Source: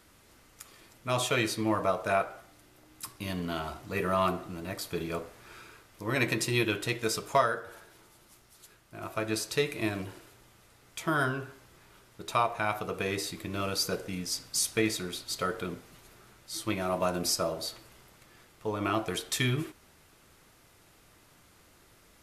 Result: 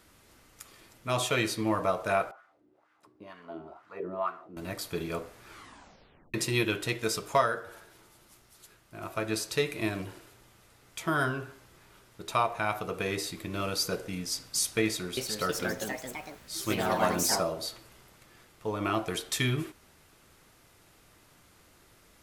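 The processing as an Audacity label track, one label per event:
2.310000	4.570000	auto-filter band-pass sine 2.1 Hz 290–1,500 Hz
5.490000	5.490000	tape stop 0.85 s
14.850000	17.540000	delay with pitch and tempo change per echo 321 ms, each echo +3 semitones, echoes 3

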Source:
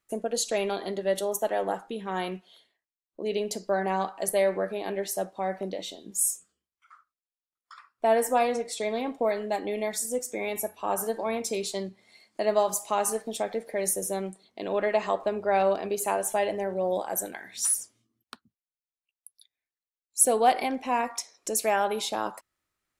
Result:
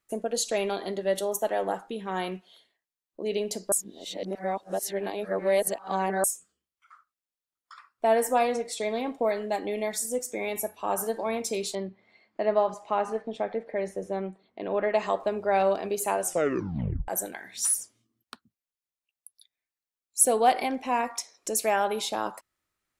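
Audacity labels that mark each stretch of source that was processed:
3.720000	6.240000	reverse
11.750000	14.940000	low-pass filter 2,300 Hz
16.210000	16.210000	tape stop 0.87 s

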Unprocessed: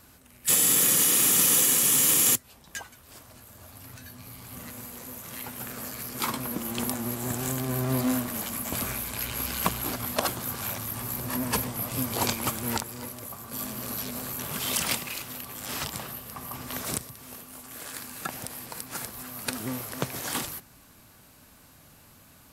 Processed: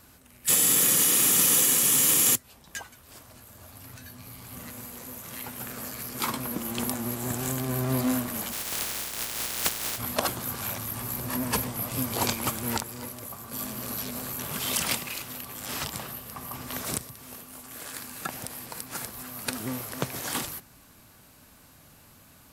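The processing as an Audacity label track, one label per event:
8.510000	9.970000	compressing power law on the bin magnitudes exponent 0.11

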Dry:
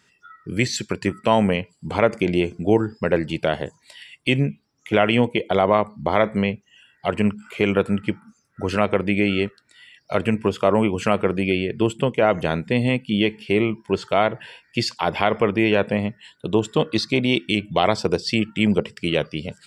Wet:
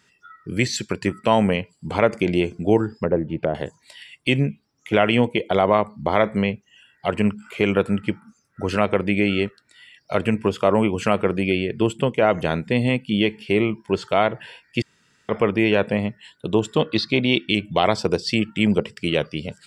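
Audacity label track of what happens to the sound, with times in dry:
2.950000	3.550000	treble cut that deepens with the level closes to 750 Hz, closed at −18.5 dBFS
14.820000	15.290000	fill with room tone
16.800000	17.550000	high shelf with overshoot 5,400 Hz −8.5 dB, Q 1.5

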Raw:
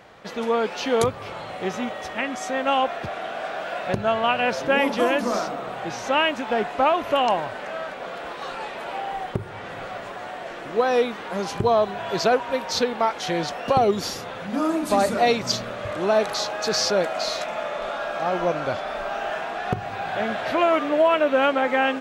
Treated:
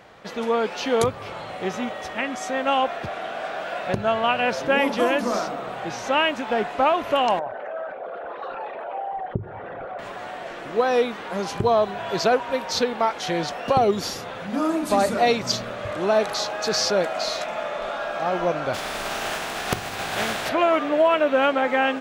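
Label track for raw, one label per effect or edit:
7.390000	9.990000	spectral envelope exaggerated exponent 2
18.730000	20.480000	compressing power law on the bin magnitudes exponent 0.5

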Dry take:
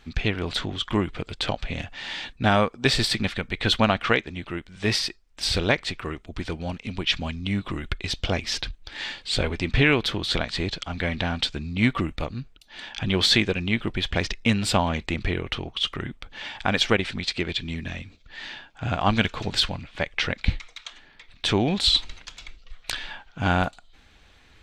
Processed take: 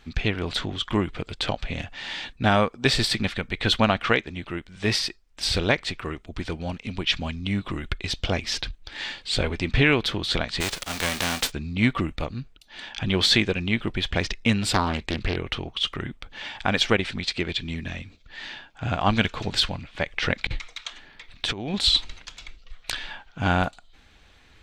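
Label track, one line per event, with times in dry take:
10.600000	11.500000	spectral envelope flattened exponent 0.3
14.730000	15.370000	highs frequency-modulated by the lows depth 0.83 ms
20.080000	21.740000	compressor whose output falls as the input rises −26 dBFS, ratio −0.5

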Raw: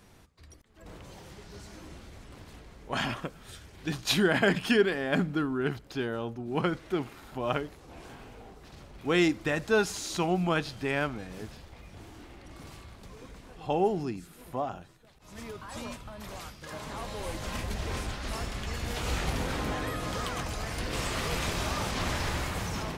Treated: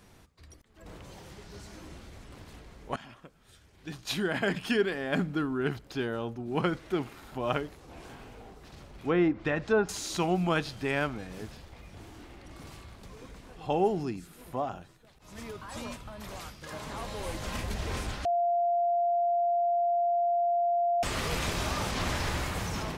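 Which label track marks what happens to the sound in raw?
2.960000	5.740000	fade in, from −20.5 dB
8.970000	9.890000	treble cut that deepens with the level closes to 1,400 Hz, closed at −22 dBFS
18.250000	21.030000	beep over 694 Hz −23.5 dBFS

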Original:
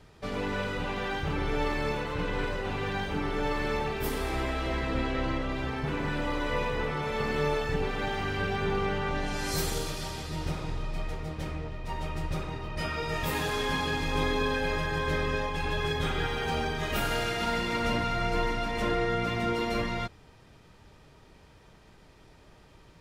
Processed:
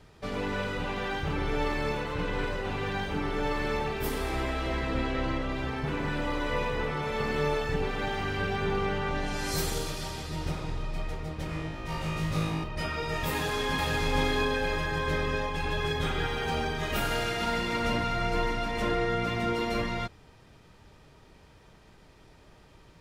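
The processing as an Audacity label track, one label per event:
11.470000	12.640000	flutter between parallel walls apart 3.2 metres, dies away in 0.83 s
13.320000	13.980000	delay throw 460 ms, feedback 30%, level −3 dB

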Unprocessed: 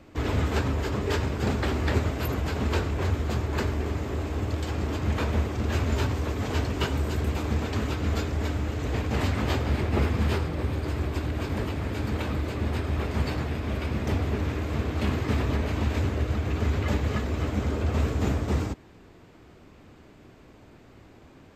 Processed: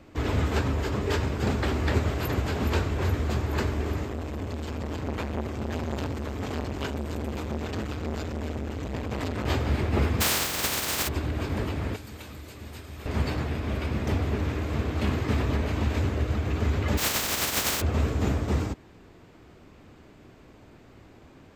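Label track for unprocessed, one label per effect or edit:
1.650000	2.290000	delay throw 420 ms, feedback 70%, level −8.5 dB
4.050000	9.460000	saturating transformer saturates under 600 Hz
10.200000	11.070000	compressing power law on the bin magnitudes exponent 0.18
11.960000	13.060000	first-order pre-emphasis coefficient 0.8
15.590000	16.060000	hard clipping −16.5 dBFS
16.970000	17.800000	compressing power law on the bin magnitudes exponent 0.17

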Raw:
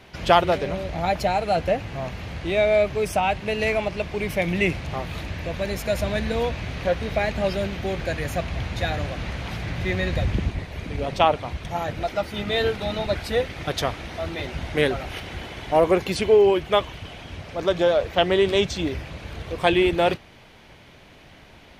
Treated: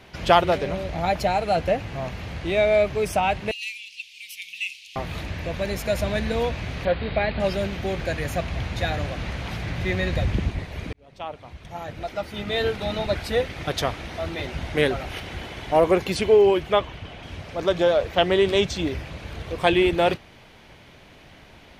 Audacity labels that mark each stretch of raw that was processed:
3.510000	4.960000	elliptic high-pass filter 2,600 Hz, stop band 50 dB
6.850000	7.400000	Butterworth low-pass 4,700 Hz 96 dB per octave
10.930000	12.920000	fade in
16.720000	17.230000	high-shelf EQ 5,500 Hz −11 dB

